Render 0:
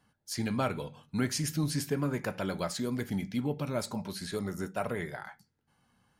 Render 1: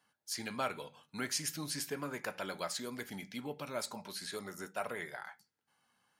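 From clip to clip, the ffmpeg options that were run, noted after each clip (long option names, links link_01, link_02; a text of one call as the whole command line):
ffmpeg -i in.wav -af "highpass=frequency=250:poles=1,lowshelf=frequency=490:gain=-9.5,volume=-1dB" out.wav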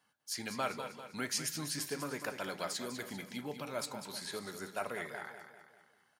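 ffmpeg -i in.wav -af "aecho=1:1:197|394|591|788|985:0.335|0.164|0.0804|0.0394|0.0193" out.wav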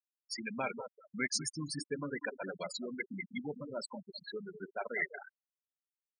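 ffmpeg -i in.wav -af "aresample=22050,aresample=44100,afftfilt=real='re*gte(hypot(re,im),0.0282)':imag='im*gte(hypot(re,im),0.0282)':win_size=1024:overlap=0.75,equalizer=frequency=630:width_type=o:width=0.33:gain=-4,equalizer=frequency=1250:width_type=o:width=0.33:gain=-10,equalizer=frequency=2000:width_type=o:width=0.33:gain=12,volume=2.5dB" out.wav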